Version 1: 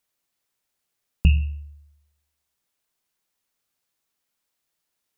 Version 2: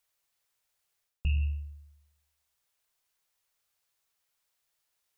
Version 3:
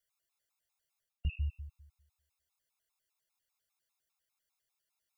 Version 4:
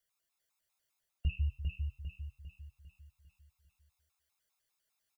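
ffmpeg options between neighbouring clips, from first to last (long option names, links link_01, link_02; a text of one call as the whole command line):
ffmpeg -i in.wav -af "equalizer=frequency=240:width_type=o:width=1:gain=-14,areverse,acompressor=threshold=-26dB:ratio=6,areverse" out.wav
ffmpeg -i in.wav -af "afftfilt=real='re*gt(sin(2*PI*5*pts/sr)*(1-2*mod(floor(b*sr/1024/690),2)),0)':imag='im*gt(sin(2*PI*5*pts/sr)*(1-2*mod(floor(b*sr/1024/690),2)),0)':win_size=1024:overlap=0.75,volume=-3.5dB" out.wav
ffmpeg -i in.wav -filter_complex "[0:a]flanger=delay=9.1:depth=8.2:regen=-71:speed=0.55:shape=triangular,asplit=2[link_01][link_02];[link_02]aecho=0:1:400|800|1200|1600|2000|2400:0.596|0.274|0.126|0.058|0.0267|0.0123[link_03];[link_01][link_03]amix=inputs=2:normalize=0,volume=5.5dB" out.wav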